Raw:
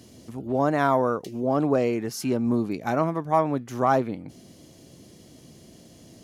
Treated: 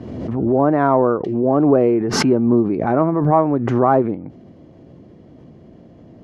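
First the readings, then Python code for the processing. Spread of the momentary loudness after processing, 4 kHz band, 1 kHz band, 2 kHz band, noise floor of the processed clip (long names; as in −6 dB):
5 LU, +11.5 dB, +5.5 dB, +4.0 dB, −45 dBFS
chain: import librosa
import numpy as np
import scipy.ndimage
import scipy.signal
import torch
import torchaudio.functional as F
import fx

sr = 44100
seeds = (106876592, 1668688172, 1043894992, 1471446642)

y = scipy.signal.sosfilt(scipy.signal.butter(2, 1300.0, 'lowpass', fs=sr, output='sos'), x)
y = fx.dynamic_eq(y, sr, hz=360.0, q=3.2, threshold_db=-40.0, ratio=4.0, max_db=6)
y = fx.pre_swell(y, sr, db_per_s=37.0)
y = y * librosa.db_to_amplitude(6.0)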